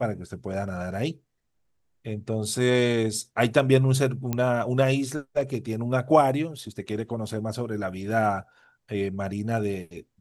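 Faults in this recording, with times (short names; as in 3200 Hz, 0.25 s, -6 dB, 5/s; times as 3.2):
4.33 pop -13 dBFS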